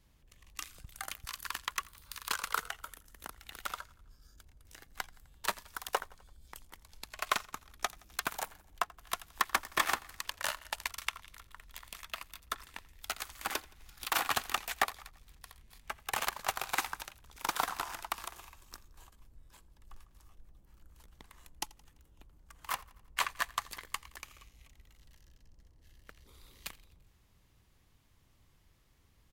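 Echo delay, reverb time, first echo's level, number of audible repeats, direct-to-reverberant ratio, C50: 85 ms, no reverb audible, −23.0 dB, 3, no reverb audible, no reverb audible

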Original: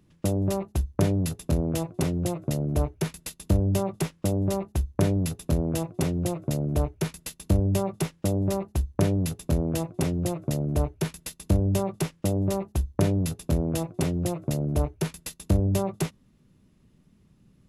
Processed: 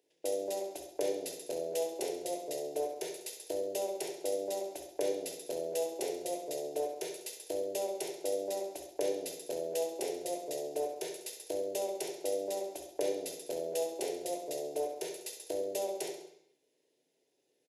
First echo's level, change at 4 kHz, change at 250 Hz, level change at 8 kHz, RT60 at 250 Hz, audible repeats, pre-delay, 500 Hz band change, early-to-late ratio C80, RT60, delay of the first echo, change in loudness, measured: −9.0 dB, −4.5 dB, −18.0 dB, −4.0 dB, 0.65 s, 1, 3 ms, −2.5 dB, 9.0 dB, 0.70 s, 67 ms, −9.5 dB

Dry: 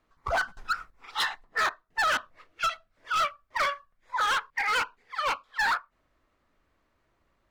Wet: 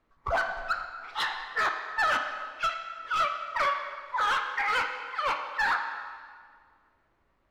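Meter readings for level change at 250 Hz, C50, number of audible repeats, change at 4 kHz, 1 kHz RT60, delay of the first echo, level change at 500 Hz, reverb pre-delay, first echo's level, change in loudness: +1.0 dB, 6.0 dB, no echo audible, −2.5 dB, 1.8 s, no echo audible, +1.0 dB, 5 ms, no echo audible, −0.5 dB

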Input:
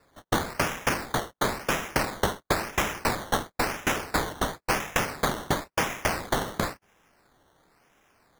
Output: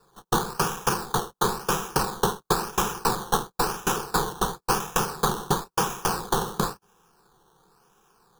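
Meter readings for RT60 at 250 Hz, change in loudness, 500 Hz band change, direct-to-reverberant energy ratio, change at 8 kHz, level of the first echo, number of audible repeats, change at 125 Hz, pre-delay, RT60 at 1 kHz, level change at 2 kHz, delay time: no reverb audible, +2.0 dB, +1.5 dB, no reverb audible, +4.0 dB, no echo audible, no echo audible, +2.0 dB, no reverb audible, no reverb audible, −4.0 dB, no echo audible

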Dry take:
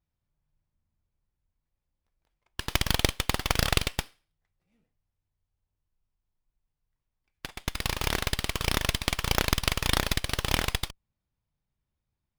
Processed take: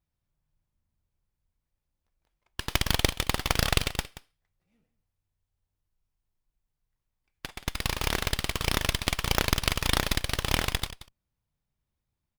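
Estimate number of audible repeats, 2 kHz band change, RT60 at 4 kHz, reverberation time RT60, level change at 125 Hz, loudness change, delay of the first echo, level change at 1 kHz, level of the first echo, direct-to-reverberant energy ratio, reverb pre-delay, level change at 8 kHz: 1, 0.0 dB, no reverb audible, no reverb audible, 0.0 dB, 0.0 dB, 179 ms, 0.0 dB, −15.5 dB, no reverb audible, no reverb audible, 0.0 dB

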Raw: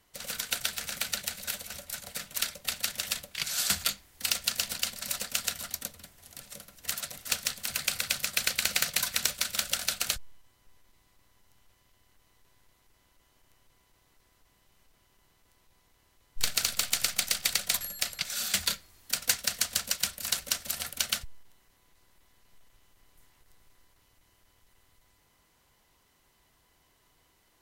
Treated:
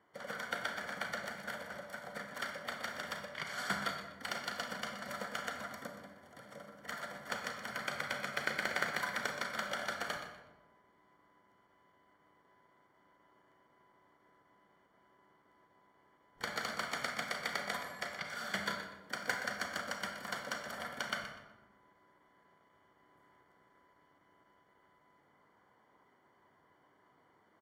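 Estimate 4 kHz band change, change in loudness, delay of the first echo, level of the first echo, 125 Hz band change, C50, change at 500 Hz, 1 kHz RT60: −13.5 dB, −9.5 dB, 123 ms, −11.0 dB, −4.0 dB, 4.5 dB, +4.0 dB, 1.0 s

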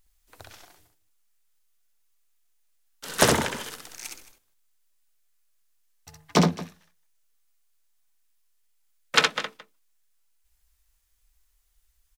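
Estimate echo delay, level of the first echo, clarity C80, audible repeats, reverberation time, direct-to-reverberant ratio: 65 ms, −4.0 dB, no reverb audible, 2, no reverb audible, no reverb audible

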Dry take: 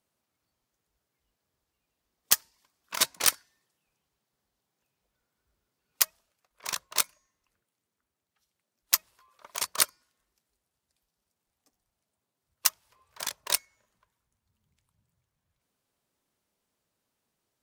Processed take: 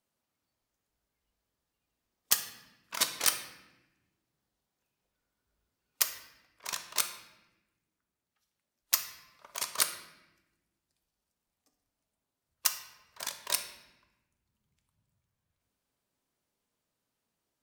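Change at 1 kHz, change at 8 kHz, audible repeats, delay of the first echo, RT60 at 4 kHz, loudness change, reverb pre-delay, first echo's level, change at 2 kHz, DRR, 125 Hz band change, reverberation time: −3.0 dB, −3.5 dB, no echo audible, no echo audible, 0.80 s, −3.5 dB, 3 ms, no echo audible, −3.0 dB, 6.5 dB, can't be measured, 1.1 s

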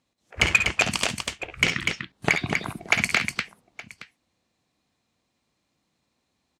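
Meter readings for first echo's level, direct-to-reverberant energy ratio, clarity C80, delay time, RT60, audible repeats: −10.0 dB, no reverb audible, no reverb audible, 54 ms, no reverb audible, 3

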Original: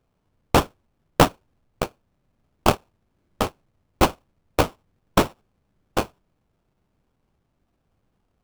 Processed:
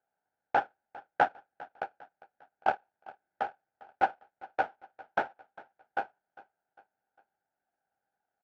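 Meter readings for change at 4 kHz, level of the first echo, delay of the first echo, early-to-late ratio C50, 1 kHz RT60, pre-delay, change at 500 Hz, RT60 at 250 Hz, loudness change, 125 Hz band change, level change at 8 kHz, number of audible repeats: −22.0 dB, −20.5 dB, 402 ms, no reverb audible, no reverb audible, no reverb audible, −12.5 dB, no reverb audible, −10.0 dB, below −25 dB, below −30 dB, 3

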